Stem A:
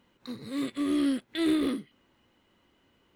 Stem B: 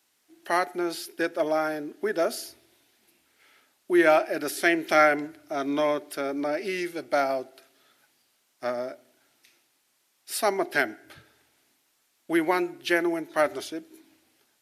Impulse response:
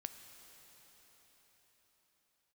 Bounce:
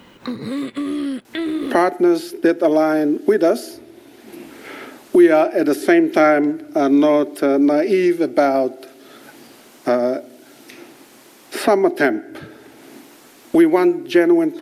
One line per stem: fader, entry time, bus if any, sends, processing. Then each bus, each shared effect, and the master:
0.0 dB, 0.00 s, no send, compression 2.5:1, threshold -38 dBFS, peak gain reduction 10.5 dB
+2.5 dB, 1.25 s, no send, peaking EQ 290 Hz +13 dB 2.3 oct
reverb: none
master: three bands compressed up and down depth 70%

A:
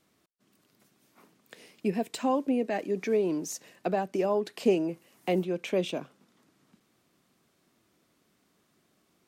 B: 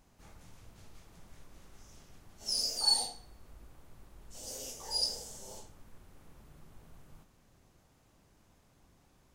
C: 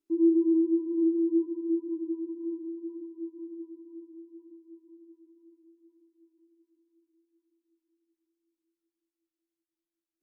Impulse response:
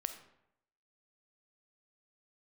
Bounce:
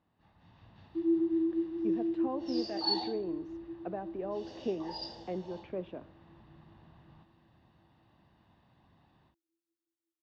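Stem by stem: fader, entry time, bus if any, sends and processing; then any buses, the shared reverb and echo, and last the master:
-13.0 dB, 0.00 s, send -7 dB, Bessel low-pass 1.7 kHz, order 4
-14.5 dB, 0.00 s, send -5.5 dB, steep low-pass 4 kHz 36 dB/octave; comb 1.1 ms, depth 48%; level rider gain up to 12 dB
-6.0 dB, 0.85 s, no send, none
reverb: on, RT60 0.80 s, pre-delay 5 ms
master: high-pass 91 Hz 12 dB/octave; peaking EQ 2.3 kHz -4.5 dB 0.44 oct

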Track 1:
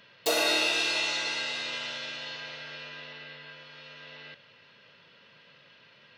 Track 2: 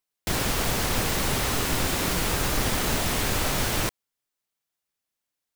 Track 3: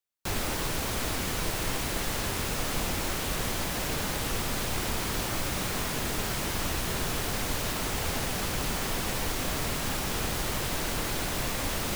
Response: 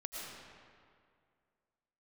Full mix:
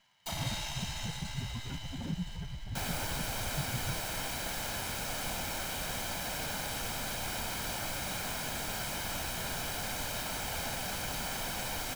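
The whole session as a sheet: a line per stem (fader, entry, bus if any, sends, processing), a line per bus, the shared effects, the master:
-11.0 dB, 0.00 s, no send, comb filter that takes the minimum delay 1 ms; short-mantissa float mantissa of 2-bit
-12.0 dB, 0.05 s, no send, spectral contrast enhancement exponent 3.3; peaking EQ 150 Hz +12.5 dB 0.95 oct
-5.5 dB, 2.50 s, no send, none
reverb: none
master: bass shelf 150 Hz -9 dB; comb 1.3 ms, depth 52%

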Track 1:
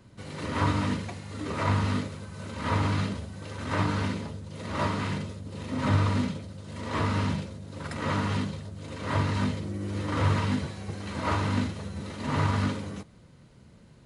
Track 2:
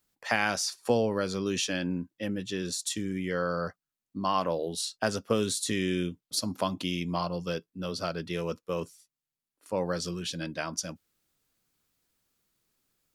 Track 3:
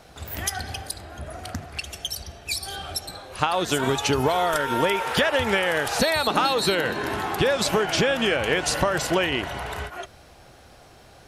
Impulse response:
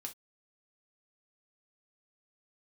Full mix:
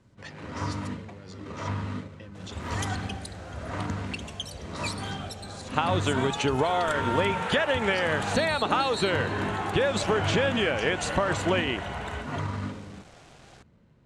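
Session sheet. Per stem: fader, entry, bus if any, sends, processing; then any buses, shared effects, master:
-6.0 dB, 0.00 s, no send, median filter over 9 samples
-6.5 dB, 0.00 s, no send, compressor with a negative ratio -41 dBFS, ratio -1
-3.0 dB, 2.35 s, no send, peaking EQ 5.2 kHz -12 dB 0.45 oct; bit crusher 8-bit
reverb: none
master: low-pass 8.1 kHz 24 dB/octave

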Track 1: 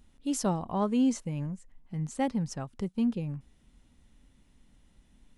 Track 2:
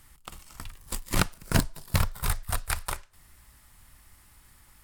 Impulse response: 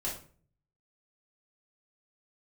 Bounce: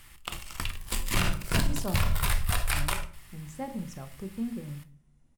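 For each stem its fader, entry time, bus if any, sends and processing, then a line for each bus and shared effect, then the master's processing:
-8.0 dB, 1.40 s, muted 2.09–2.72 s, send -8 dB, peaking EQ 3.4 kHz -9 dB 0.94 oct
+2.5 dB, 0.00 s, send -12 dB, waveshaping leveller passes 1; peaking EQ 2.7 kHz +8 dB 1.1 oct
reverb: on, RT60 0.45 s, pre-delay 3 ms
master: peak limiter -15.5 dBFS, peak gain reduction 16 dB

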